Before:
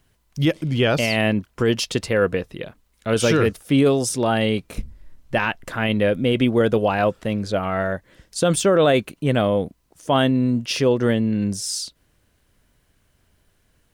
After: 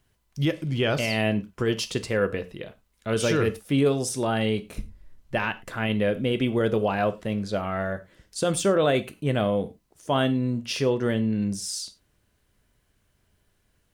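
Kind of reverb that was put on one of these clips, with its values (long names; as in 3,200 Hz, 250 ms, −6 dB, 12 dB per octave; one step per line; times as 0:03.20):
reverb whose tail is shaped and stops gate 130 ms falling, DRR 10.5 dB
level −5.5 dB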